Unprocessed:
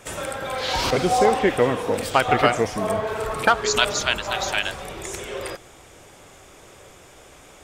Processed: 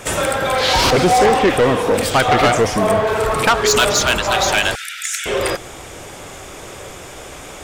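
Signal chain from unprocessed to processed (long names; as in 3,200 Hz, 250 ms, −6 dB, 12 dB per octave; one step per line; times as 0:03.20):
in parallel at +1.5 dB: speech leveller within 4 dB 2 s
on the sum: soft clipping −12.5 dBFS, distortion −8 dB
0:04.75–0:05.26: linear-phase brick-wall high-pass 1,300 Hz
level +4 dB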